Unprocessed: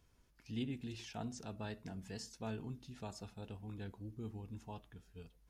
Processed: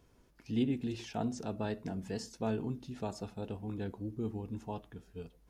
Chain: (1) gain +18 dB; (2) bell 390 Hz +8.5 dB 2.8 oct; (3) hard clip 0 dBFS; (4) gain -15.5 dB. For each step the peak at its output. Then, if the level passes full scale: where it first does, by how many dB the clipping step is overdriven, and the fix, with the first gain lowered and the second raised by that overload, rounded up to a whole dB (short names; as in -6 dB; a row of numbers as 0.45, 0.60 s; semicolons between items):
-11.0, -5.0, -5.0, -20.5 dBFS; no overload